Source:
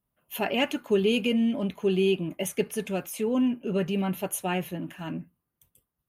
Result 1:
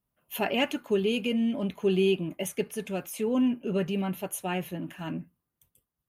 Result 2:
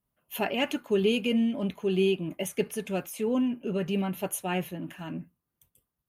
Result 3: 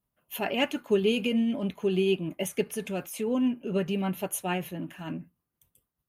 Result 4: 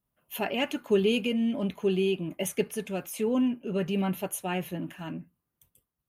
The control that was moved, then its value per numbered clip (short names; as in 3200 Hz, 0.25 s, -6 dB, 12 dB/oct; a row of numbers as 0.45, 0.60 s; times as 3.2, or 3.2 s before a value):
tremolo, rate: 0.64, 3.1, 6.7, 1.3 Hz